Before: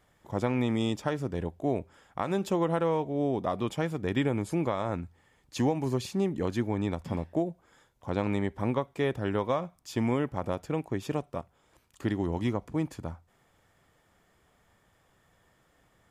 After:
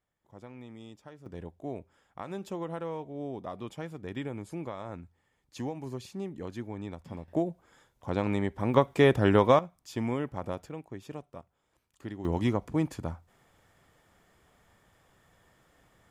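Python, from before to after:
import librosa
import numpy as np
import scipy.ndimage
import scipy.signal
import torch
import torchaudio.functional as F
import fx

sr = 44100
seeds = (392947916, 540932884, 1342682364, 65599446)

y = fx.gain(x, sr, db=fx.steps((0.0, -19.0), (1.26, -9.0), (7.28, 0.0), (8.74, 7.5), (9.59, -3.5), (10.69, -10.0), (12.25, 2.0)))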